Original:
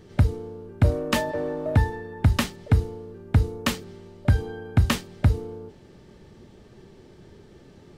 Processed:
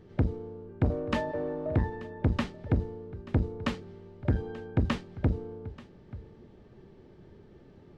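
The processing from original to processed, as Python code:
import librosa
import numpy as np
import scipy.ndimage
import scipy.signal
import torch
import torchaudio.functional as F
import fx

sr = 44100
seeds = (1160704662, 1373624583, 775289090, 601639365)

y = fx.spacing_loss(x, sr, db_at_10k=22)
y = y + 10.0 ** (-20.0 / 20.0) * np.pad(y, (int(884 * sr / 1000.0), 0))[:len(y)]
y = fx.transformer_sat(y, sr, knee_hz=220.0)
y = F.gain(torch.from_numpy(y), -3.5).numpy()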